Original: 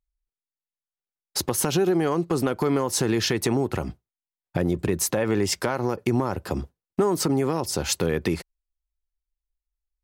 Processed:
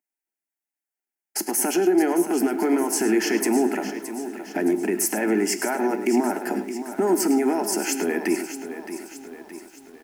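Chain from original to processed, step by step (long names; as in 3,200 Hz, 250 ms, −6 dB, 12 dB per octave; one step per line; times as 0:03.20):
elliptic high-pass filter 190 Hz
brickwall limiter −18.5 dBFS, peak gain reduction 7.5 dB
phaser with its sweep stopped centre 760 Hz, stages 8
slap from a distant wall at 18 metres, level −11 dB
on a send at −12 dB: convolution reverb, pre-delay 3 ms
on the sum: feedback echo at a low word length 619 ms, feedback 55%, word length 9 bits, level −11 dB
level +7.5 dB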